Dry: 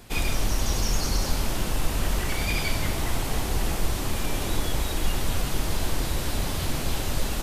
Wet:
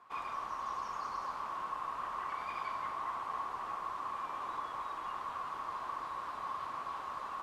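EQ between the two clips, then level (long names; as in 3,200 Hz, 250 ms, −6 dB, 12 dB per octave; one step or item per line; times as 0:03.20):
resonant band-pass 1,100 Hz, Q 12
+8.5 dB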